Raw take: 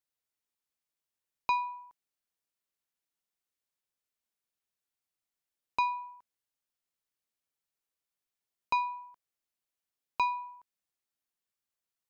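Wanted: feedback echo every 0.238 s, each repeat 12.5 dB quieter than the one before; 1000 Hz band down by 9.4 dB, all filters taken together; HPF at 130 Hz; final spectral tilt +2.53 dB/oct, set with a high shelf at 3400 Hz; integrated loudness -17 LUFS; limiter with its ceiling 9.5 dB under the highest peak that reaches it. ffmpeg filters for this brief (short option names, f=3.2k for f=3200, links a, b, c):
-af "highpass=130,equalizer=f=1k:t=o:g=-9,highshelf=f=3.4k:g=-6.5,alimiter=level_in=8dB:limit=-24dB:level=0:latency=1,volume=-8dB,aecho=1:1:238|476|714:0.237|0.0569|0.0137,volume=29dB"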